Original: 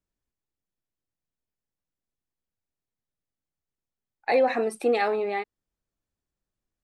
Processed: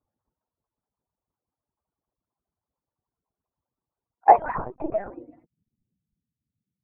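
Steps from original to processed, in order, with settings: harmonic-percussive separation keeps percussive; low-pass 1.6 kHz 12 dB/octave; transient shaper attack +4 dB, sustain +8 dB; 4.38–5.10 s: LPC vocoder at 8 kHz pitch kept; low-pass sweep 1 kHz -> 190 Hz, 4.76–5.46 s; trim +6 dB

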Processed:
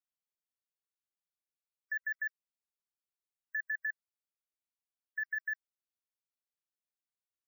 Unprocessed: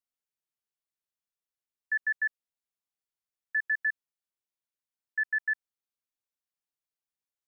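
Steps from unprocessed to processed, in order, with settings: block-companded coder 3-bit; spectral gate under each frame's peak -25 dB strong; 3.65–5.35 s: dynamic bell 1.7 kHz, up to +5 dB, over -38 dBFS, Q 2.9; level held to a coarse grid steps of 17 dB

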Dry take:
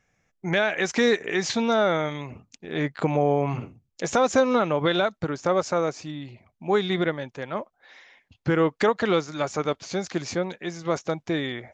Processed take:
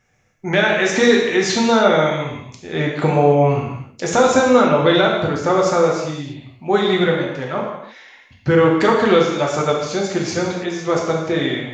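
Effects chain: gated-style reverb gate 350 ms falling, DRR -2 dB; trim +4 dB

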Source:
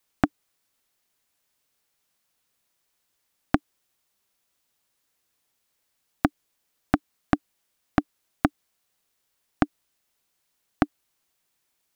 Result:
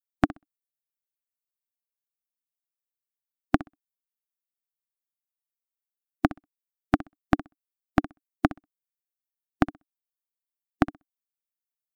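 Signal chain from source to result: expander on every frequency bin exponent 2; flutter echo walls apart 10.9 m, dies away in 0.22 s; trim +1.5 dB

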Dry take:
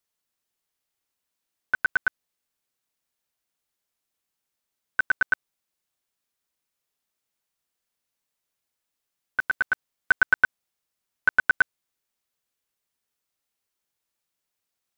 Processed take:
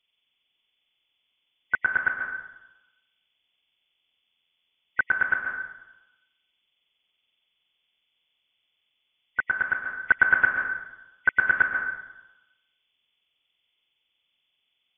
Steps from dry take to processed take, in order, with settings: knee-point frequency compression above 1.9 kHz 4:1; 10.42–11.57 s: dynamic bell 840 Hz, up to -4 dB, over -36 dBFS, Q 1.6; plate-style reverb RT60 1 s, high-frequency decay 0.65×, pre-delay 115 ms, DRR 3 dB

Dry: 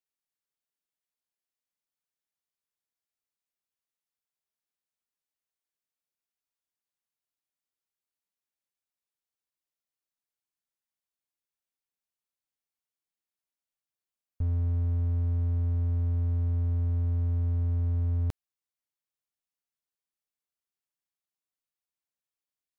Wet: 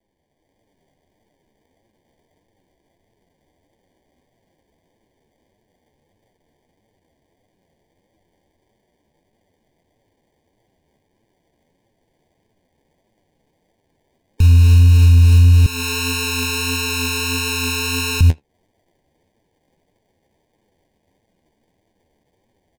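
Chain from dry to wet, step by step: spectral gate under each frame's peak -30 dB strong; sample-and-hold 33×; speakerphone echo 80 ms, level -29 dB; level rider gain up to 8 dB; Butterworth band-stop 1.3 kHz, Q 2.1; flange 1.6 Hz, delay 8.6 ms, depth 5.9 ms, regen +35%; 15.66–18.21 s: Chebyshev high-pass 510 Hz, order 2; compression 2.5:1, threshold -34 dBFS, peak gain reduction 11 dB; loudness maximiser +25.5 dB; loudspeaker Doppler distortion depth 0.11 ms; trim -3 dB

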